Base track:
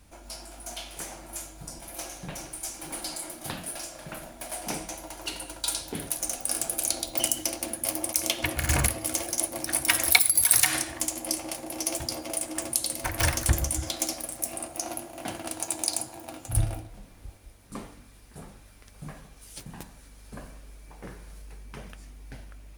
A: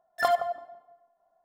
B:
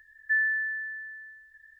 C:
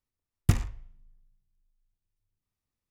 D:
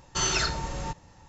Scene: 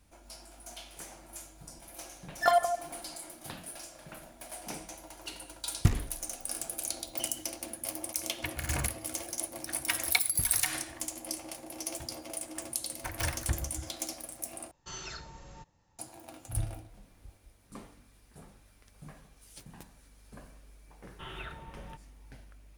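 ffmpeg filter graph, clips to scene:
-filter_complex "[3:a]asplit=2[s0][s1];[4:a]asplit=2[s2][s3];[0:a]volume=0.398[s4];[s3]aresample=8000,aresample=44100[s5];[s4]asplit=2[s6][s7];[s6]atrim=end=14.714[s8];[s2]atrim=end=1.28,asetpts=PTS-STARTPTS,volume=0.15[s9];[s7]atrim=start=15.986[s10];[1:a]atrim=end=1.44,asetpts=PTS-STARTPTS,afade=t=in:d=0.004:c=hsin,afade=t=out:st=1.436:d=0.004:c=hsin,adelay=2230[s11];[s0]atrim=end=2.9,asetpts=PTS-STARTPTS,volume=0.794,afade=t=in:d=0.004:c=hsin,afade=t=out:st=2.896:d=0.004:c=hsin,adelay=5360[s12];[s1]atrim=end=2.9,asetpts=PTS-STARTPTS,volume=0.158,afade=t=in:d=0.004:c=hsin,afade=t=out:st=2.896:d=0.004:c=hsin,adelay=9900[s13];[s5]atrim=end=1.28,asetpts=PTS-STARTPTS,volume=0.188,afade=t=in:d=0.004:c=hsin,afade=t=out:st=1.276:d=0.004:c=hsin,adelay=21040[s14];[s8][s9]acrossfade=d=0.004:c1=hsin:c2=hsin[s15];[s15][s10]acrossfade=d=0.004:c1=hsin:c2=hsin[s16];[s16][s11][s12][s13][s14]amix=inputs=5:normalize=0"

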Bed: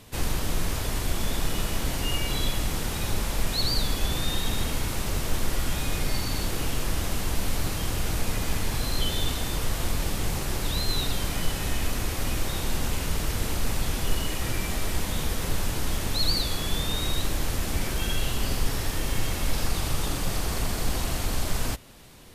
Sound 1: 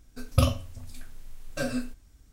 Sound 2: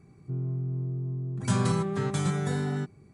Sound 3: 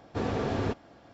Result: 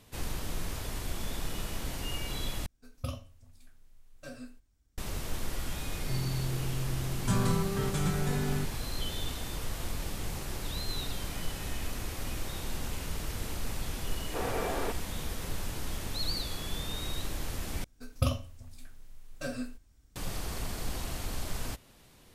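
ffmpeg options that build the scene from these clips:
-filter_complex "[1:a]asplit=2[s0][s1];[0:a]volume=0.376[s2];[3:a]highpass=430,lowpass=3100[s3];[s2]asplit=3[s4][s5][s6];[s4]atrim=end=2.664[s7];[s0]atrim=end=2.32,asetpts=PTS-STARTPTS,volume=0.178[s8];[s5]atrim=start=4.976:end=17.844[s9];[s1]atrim=end=2.32,asetpts=PTS-STARTPTS,volume=0.473[s10];[s6]atrim=start=20.156[s11];[2:a]atrim=end=3.13,asetpts=PTS-STARTPTS,volume=0.708,afade=t=in:d=0.004:c=hsin,afade=t=out:st=3.126:d=0.004:c=hsin,adelay=5800[s12];[s3]atrim=end=1.13,asetpts=PTS-STARTPTS,afade=t=in:d=0.004:c=hsin,afade=t=out:st=1.126:d=0.004:c=hsin,adelay=14190[s13];[s7][s8]acrossfade=d=0.004:c1=hsin:c2=hsin[s14];[s14][s9]acrossfade=d=0.004:c1=hsin:c2=hsin[s15];[s15][s10]acrossfade=d=0.004:c1=hsin:c2=hsin[s16];[s16][s11]acrossfade=d=0.004:c1=hsin:c2=hsin[s17];[s17][s12][s13]amix=inputs=3:normalize=0"

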